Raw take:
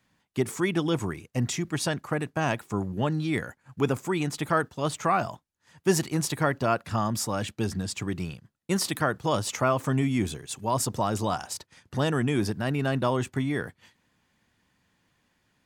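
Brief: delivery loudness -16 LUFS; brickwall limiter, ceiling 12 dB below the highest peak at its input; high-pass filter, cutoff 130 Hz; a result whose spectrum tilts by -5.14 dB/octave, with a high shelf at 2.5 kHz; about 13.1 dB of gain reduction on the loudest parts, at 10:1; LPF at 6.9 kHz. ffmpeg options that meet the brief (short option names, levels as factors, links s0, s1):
-af "highpass=130,lowpass=6900,highshelf=f=2500:g=-5.5,acompressor=threshold=0.0251:ratio=10,volume=18.8,alimiter=limit=0.596:level=0:latency=1"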